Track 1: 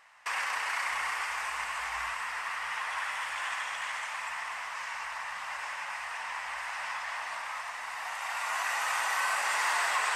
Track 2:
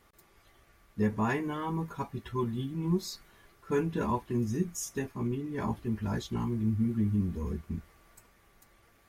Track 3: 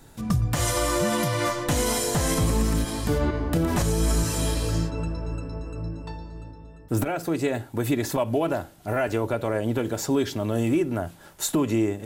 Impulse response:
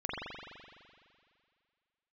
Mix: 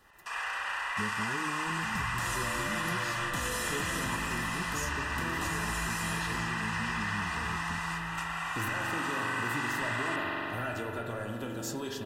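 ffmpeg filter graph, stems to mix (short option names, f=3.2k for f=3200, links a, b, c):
-filter_complex "[0:a]highpass=220,volume=1.5dB,asplit=2[a][b];[b]volume=-5.5dB[c];[1:a]volume=-1dB,asplit=2[d][e];[2:a]flanger=delay=7.2:depth=9.8:regen=52:speed=0.84:shape=triangular,adelay=1650,volume=-6dB,asplit=2[f][g];[g]volume=-4.5dB[h];[e]apad=whole_len=448048[i];[a][i]sidechaingate=range=-33dB:threshold=-56dB:ratio=16:detection=peak[j];[3:a]atrim=start_sample=2205[k];[c][h]amix=inputs=2:normalize=0[l];[l][k]afir=irnorm=-1:irlink=0[m];[j][d][f][m]amix=inputs=4:normalize=0,acrossover=split=430|940[n][o][p];[n]acompressor=threshold=-37dB:ratio=4[q];[o]acompressor=threshold=-50dB:ratio=4[r];[p]acompressor=threshold=-31dB:ratio=4[s];[q][r][s]amix=inputs=3:normalize=0,asuperstop=centerf=2200:order=12:qfactor=7.3"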